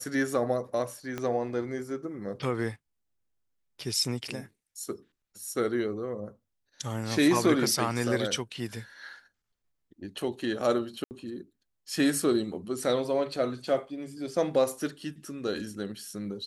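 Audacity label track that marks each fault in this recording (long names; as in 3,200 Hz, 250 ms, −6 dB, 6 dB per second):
1.180000	1.180000	click −19 dBFS
11.040000	11.110000	drop-out 69 ms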